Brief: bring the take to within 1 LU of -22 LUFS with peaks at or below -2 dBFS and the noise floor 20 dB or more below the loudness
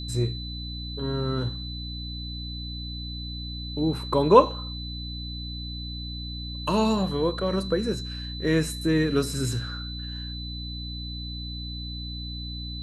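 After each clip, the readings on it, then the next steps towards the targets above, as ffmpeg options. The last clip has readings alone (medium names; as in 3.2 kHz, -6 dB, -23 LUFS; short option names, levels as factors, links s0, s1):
hum 60 Hz; highest harmonic 300 Hz; hum level -33 dBFS; steady tone 4 kHz; tone level -37 dBFS; loudness -28.0 LUFS; peak level -2.5 dBFS; loudness target -22.0 LUFS
-> -af "bandreject=f=60:t=h:w=4,bandreject=f=120:t=h:w=4,bandreject=f=180:t=h:w=4,bandreject=f=240:t=h:w=4,bandreject=f=300:t=h:w=4"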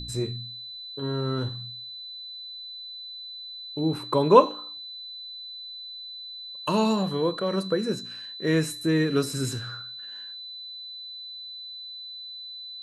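hum not found; steady tone 4 kHz; tone level -37 dBFS
-> -af "bandreject=f=4000:w=30"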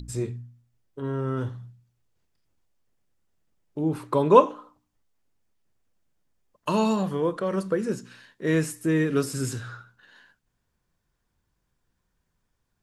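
steady tone not found; loudness -25.5 LUFS; peak level -2.0 dBFS; loudness target -22.0 LUFS
-> -af "volume=1.5,alimiter=limit=0.794:level=0:latency=1"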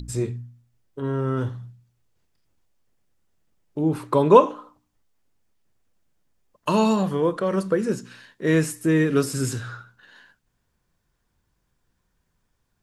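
loudness -22.5 LUFS; peak level -2.0 dBFS; noise floor -73 dBFS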